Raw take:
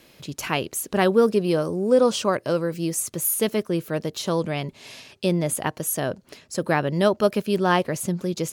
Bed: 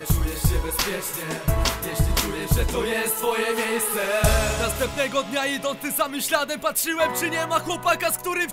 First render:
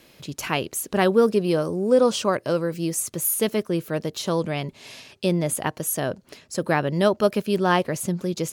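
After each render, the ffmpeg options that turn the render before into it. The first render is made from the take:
-af anull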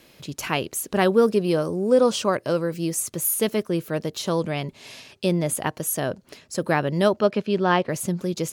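-filter_complex "[0:a]asettb=1/sr,asplit=3[a][b][c];[a]atrim=end=7.204[d];[b]atrim=start=7.2:end=7.89,asetpts=PTS-STARTPTS,afade=t=in:d=0.004:c=qsin,afade=t=out:st=0.686:d=0.004:c=qsin,highpass=110,lowpass=4.4k[e];[c]atrim=start=7.886[f];[d][e]acrossfade=d=0.004:c1=hsin:c2=qsin[g];[g][f]acrossfade=d=0.004:c1=qsin:c2=hsin"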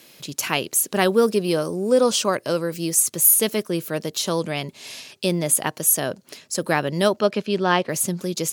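-af "highpass=130,highshelf=f=3.3k:g=9.5"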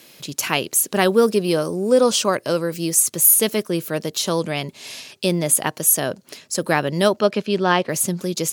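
-af "volume=2dB,alimiter=limit=-2dB:level=0:latency=1"

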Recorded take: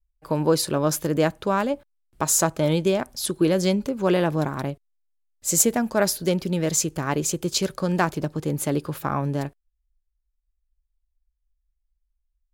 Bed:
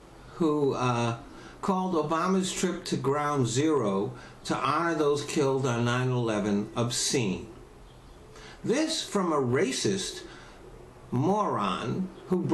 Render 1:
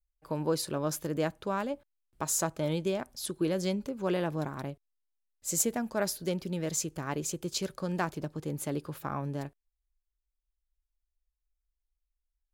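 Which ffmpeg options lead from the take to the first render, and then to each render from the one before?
-af "volume=-9.5dB"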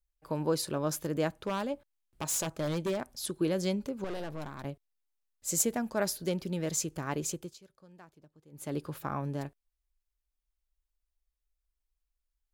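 -filter_complex "[0:a]asettb=1/sr,asplit=3[a][b][c];[a]atrim=end=1.364[d];[b]atrim=start=1.36:end=3.09,asetpts=PTS-STARTPTS,afade=t=in:d=0.004:c=qsin,afade=t=out:st=1.726:d=0.004:c=qsin,aeval=exprs='0.0531*(abs(mod(val(0)/0.0531+3,4)-2)-1)':c=same[e];[c]atrim=start=3.086[f];[d][e]acrossfade=d=0.004:c1=hsin:c2=qsin[g];[g][f]acrossfade=d=0.004:c1=qsin:c2=hsin,asettb=1/sr,asplit=3[h][i][j];[h]atrim=end=4.044[k];[i]atrim=start=4.04:end=4.65,asetpts=PTS-STARTPTS,afade=t=in:d=0.004:c=qsin,afade=t=out:st=0.606:d=0.004:c=qsin,aeval=exprs='(tanh(56.2*val(0)+0.75)-tanh(0.75))/56.2':c=same[l];[j]atrim=start=4.646[m];[k][l]acrossfade=d=0.004:c1=hsin:c2=qsin[n];[n][m]acrossfade=d=0.004:c1=qsin:c2=hsin,asplit=3[o][p][q];[o]atrim=end=7.57,asetpts=PTS-STARTPTS,afade=t=out:st=7.3:d=0.27:silence=0.0707946[r];[p]atrim=start=7.57:end=8.51,asetpts=PTS-STARTPTS,volume=-23dB[s];[q]atrim=start=8.51,asetpts=PTS-STARTPTS,afade=t=in:d=0.27:silence=0.0707946[t];[r][s][t]concat=n=3:v=0:a=1"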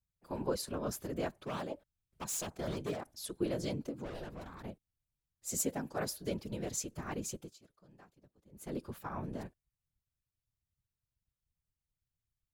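-af "afftfilt=real='hypot(re,im)*cos(2*PI*random(0))':imag='hypot(re,im)*sin(2*PI*random(1))':win_size=512:overlap=0.75"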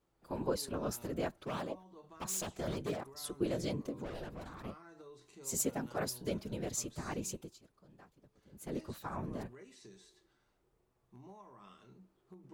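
-filter_complex "[1:a]volume=-29dB[a];[0:a][a]amix=inputs=2:normalize=0"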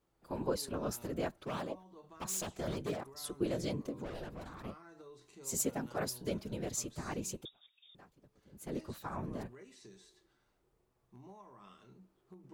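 -filter_complex "[0:a]asettb=1/sr,asplit=3[a][b][c];[a]atrim=end=7.454[d];[b]atrim=start=7.45:end=7.95,asetpts=PTS-STARTPTS,afade=t=in:d=0.004:c=qsin,afade=t=out:st=0.496:d=0.004:c=qsin,lowpass=f=3.2k:t=q:w=0.5098,lowpass=f=3.2k:t=q:w=0.6013,lowpass=f=3.2k:t=q:w=0.9,lowpass=f=3.2k:t=q:w=2.563,afreqshift=-3800[e];[c]atrim=start=7.946[f];[d][e]acrossfade=d=0.004:c1=hsin:c2=qsin[g];[g][f]acrossfade=d=0.004:c1=qsin:c2=hsin"

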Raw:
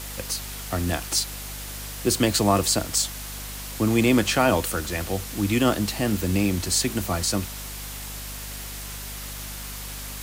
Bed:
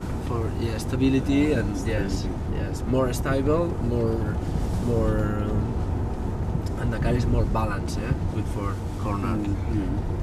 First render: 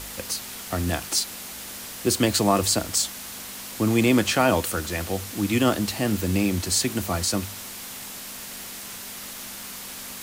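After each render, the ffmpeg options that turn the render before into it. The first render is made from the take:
-af "bandreject=f=50:t=h:w=4,bandreject=f=100:t=h:w=4,bandreject=f=150:t=h:w=4"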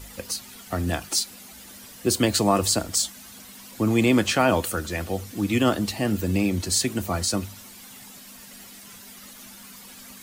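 -af "afftdn=nr=11:nf=-38"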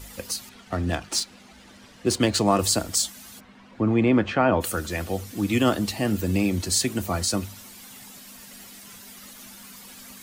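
-filter_complex "[0:a]asettb=1/sr,asplit=3[a][b][c];[a]atrim=end=0.494[d];[b]atrim=start=0.49:end=2.59,asetpts=PTS-STARTPTS,afade=t=in:d=0.004:c=qsin,afade=t=out:st=2.096:d=0.004:c=qsin,adynamicsmooth=sensitivity=7.5:basefreq=3.8k[e];[c]atrim=start=2.586[f];[d][e]acrossfade=d=0.004:c1=hsin:c2=qsin[g];[g][f]acrossfade=d=0.004:c1=qsin:c2=hsin,asplit=3[h][i][j];[h]afade=t=out:st=3.39:d=0.02[k];[i]lowpass=2k,afade=t=in:st=3.39:d=0.02,afade=t=out:st=4.6:d=0.02[l];[j]afade=t=in:st=4.6:d=0.02[m];[k][l][m]amix=inputs=3:normalize=0"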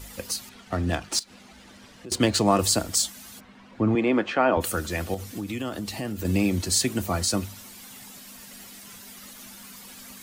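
-filter_complex "[0:a]asettb=1/sr,asplit=3[a][b][c];[a]atrim=end=1.194[d];[b]atrim=start=1.19:end=2.12,asetpts=PTS-STARTPTS,afade=t=in:d=0.004:c=qsin,afade=t=out:st=0.926:d=0.004:c=qsin,acompressor=threshold=-40dB:ratio=4:attack=3.2:release=140:knee=1:detection=peak[e];[c]atrim=start=2.116[f];[d][e]acrossfade=d=0.004:c1=hsin:c2=qsin[g];[g][f]acrossfade=d=0.004:c1=qsin:c2=hsin,asettb=1/sr,asplit=3[h][i][j];[h]atrim=end=3.954[k];[i]atrim=start=3.95:end=4.57,asetpts=PTS-STARTPTS,afade=t=in:d=0.004:c=qsin,afade=t=out:st=0.616:d=0.004:c=qsin,highpass=280[l];[j]atrim=start=4.566[m];[k][l]acrossfade=d=0.004:c1=hsin:c2=qsin[n];[n][m]acrossfade=d=0.004:c1=qsin:c2=hsin,asettb=1/sr,asplit=3[o][p][q];[o]atrim=end=5.144[r];[p]atrim=start=5.14:end=6.25,asetpts=PTS-STARTPTS,afade=t=in:d=0.004:c=qsin,afade=t=out:st=1.106:d=0.004:c=qsin,acompressor=threshold=-28dB:ratio=5:attack=3.2:release=140:knee=1:detection=peak[s];[q]atrim=start=6.246[t];[r][s]acrossfade=d=0.004:c1=hsin:c2=qsin[u];[u][t]acrossfade=d=0.004:c1=qsin:c2=hsin"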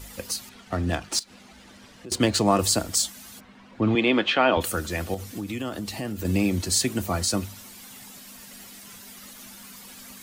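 -filter_complex "[0:a]asettb=1/sr,asplit=3[a][b][c];[a]atrim=end=3.824[d];[b]atrim=start=3.82:end=4.63,asetpts=PTS-STARTPTS,afade=t=in:d=0.004:c=qsin,afade=t=out:st=0.806:d=0.004:c=qsin,equalizer=f=3.4k:t=o:w=1:g=13.5[e];[c]atrim=start=4.626[f];[d][e]acrossfade=d=0.004:c1=hsin:c2=qsin[g];[g][f]acrossfade=d=0.004:c1=qsin:c2=hsin"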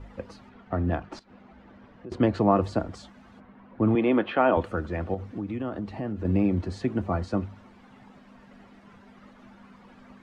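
-af "lowpass=1.3k"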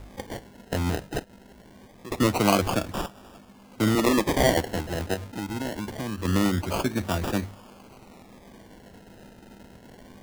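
-af "aexciter=amount=5.8:drive=9:freq=2.8k,acrusher=samples=30:mix=1:aa=0.000001:lfo=1:lforange=18:lforate=0.24"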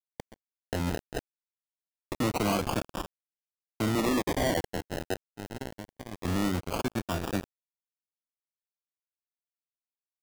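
-af "acrusher=bits=3:mix=0:aa=0.5,asoftclip=type=tanh:threshold=-22.5dB"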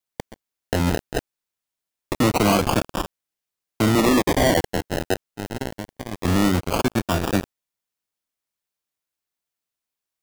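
-af "volume=9.5dB"

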